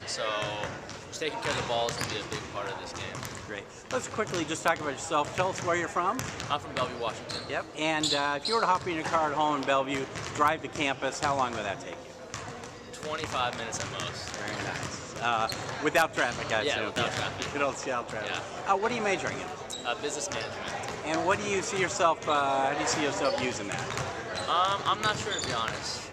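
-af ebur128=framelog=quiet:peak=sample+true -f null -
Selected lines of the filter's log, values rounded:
Integrated loudness:
  I:         -29.9 LUFS
  Threshold: -40.0 LUFS
Loudness range:
  LRA:         5.2 LU
  Threshold: -49.9 LUFS
  LRA low:   -33.1 LUFS
  LRA high:  -27.9 LUFS
Sample peak:
  Peak:      -11.2 dBFS
True peak:
  Peak:      -11.0 dBFS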